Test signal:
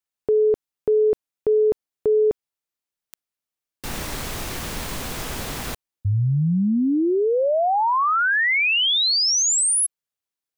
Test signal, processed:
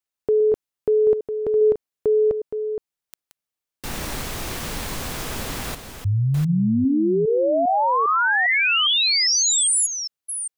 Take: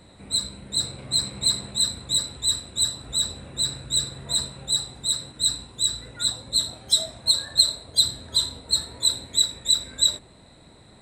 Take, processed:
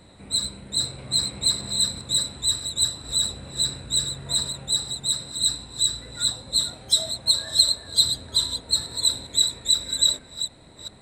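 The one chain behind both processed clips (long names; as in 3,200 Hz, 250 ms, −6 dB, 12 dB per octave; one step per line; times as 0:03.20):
delay that plays each chunk backwards 403 ms, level −8.5 dB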